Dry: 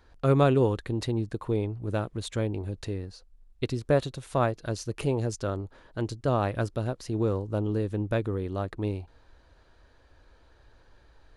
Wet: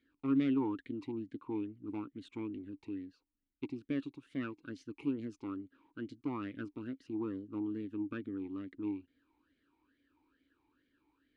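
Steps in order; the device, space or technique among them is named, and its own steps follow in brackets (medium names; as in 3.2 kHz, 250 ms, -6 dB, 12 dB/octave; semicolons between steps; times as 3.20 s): talk box (valve stage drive 19 dB, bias 0.65; talking filter i-u 2.3 Hz); trim +4 dB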